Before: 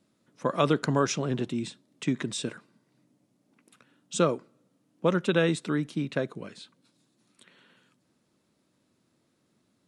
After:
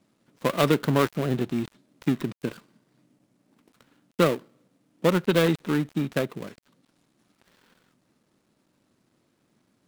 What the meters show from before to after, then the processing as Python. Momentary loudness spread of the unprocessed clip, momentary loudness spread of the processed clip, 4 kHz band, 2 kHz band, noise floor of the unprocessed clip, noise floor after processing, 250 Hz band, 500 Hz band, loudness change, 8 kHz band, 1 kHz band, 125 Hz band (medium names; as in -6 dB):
12 LU, 14 LU, +2.0 dB, +2.5 dB, -72 dBFS, -71 dBFS, +3.5 dB, +3.0 dB, +3.0 dB, -4.5 dB, +2.0 dB, +3.5 dB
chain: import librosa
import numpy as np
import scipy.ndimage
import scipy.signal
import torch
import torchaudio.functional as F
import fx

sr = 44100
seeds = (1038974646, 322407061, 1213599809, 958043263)

y = fx.dead_time(x, sr, dead_ms=0.22)
y = fx.dynamic_eq(y, sr, hz=6800.0, q=0.91, threshold_db=-52.0, ratio=4.0, max_db=-4)
y = y * librosa.db_to_amplitude(3.5)